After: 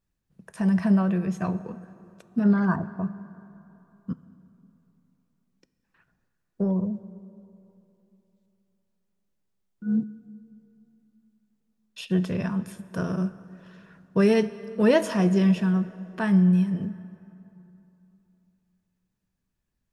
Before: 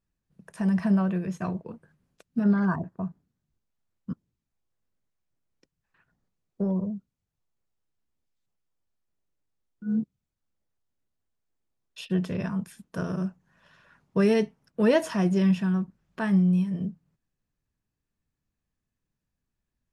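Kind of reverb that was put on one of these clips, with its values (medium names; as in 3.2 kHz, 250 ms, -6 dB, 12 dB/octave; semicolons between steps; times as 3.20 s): plate-style reverb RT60 3.1 s, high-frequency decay 0.6×, DRR 14 dB; trim +2 dB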